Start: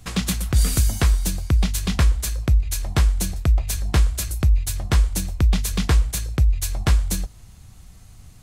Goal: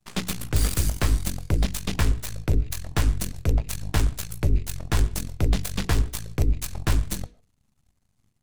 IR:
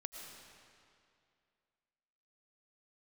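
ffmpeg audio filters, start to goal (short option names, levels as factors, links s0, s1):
-filter_complex "[0:a]aeval=exprs='0.355*(cos(1*acos(clip(val(0)/0.355,-1,1)))-cos(1*PI/2))+0.1*(cos(4*acos(clip(val(0)/0.355,-1,1)))-cos(4*PI/2))+0.0794*(cos(6*acos(clip(val(0)/0.355,-1,1)))-cos(6*PI/2))+0.0501*(cos(7*acos(clip(val(0)/0.355,-1,1)))-cos(7*PI/2))+0.0631*(cos(8*acos(clip(val(0)/0.355,-1,1)))-cos(8*PI/2))':c=same,bandreject=f=60:t=h:w=6,bandreject=f=120:t=h:w=6,bandreject=f=180:t=h:w=6,bandreject=f=240:t=h:w=6,bandreject=f=300:t=h:w=6,bandreject=f=360:t=h:w=6,bandreject=f=420:t=h:w=6,bandreject=f=480:t=h:w=6,asplit=2[s0][s1];[1:a]atrim=start_sample=2205,afade=t=out:st=0.21:d=0.01,atrim=end_sample=9702,lowpass=4000[s2];[s1][s2]afir=irnorm=-1:irlink=0,volume=0.316[s3];[s0][s3]amix=inputs=2:normalize=0,volume=0.501"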